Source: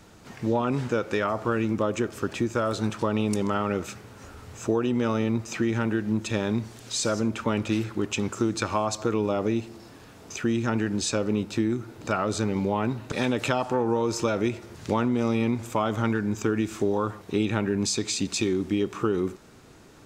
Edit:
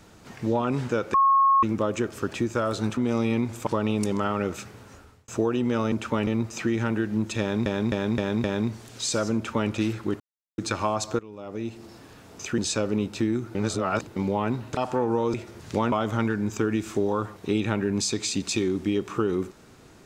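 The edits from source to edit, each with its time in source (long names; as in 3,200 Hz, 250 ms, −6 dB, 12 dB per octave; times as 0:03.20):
0:01.14–0:01.63: beep over 1,090 Hz −15.5 dBFS
0:04.10–0:04.58: fade out
0:06.35–0:06.61: repeat, 5 plays
0:07.26–0:07.61: duplicate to 0:05.22
0:08.11–0:08.49: silence
0:09.10–0:09.76: fade in quadratic, from −19 dB
0:10.49–0:10.95: remove
0:11.92–0:12.53: reverse
0:13.14–0:13.55: remove
0:14.12–0:14.49: remove
0:15.07–0:15.77: move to 0:02.97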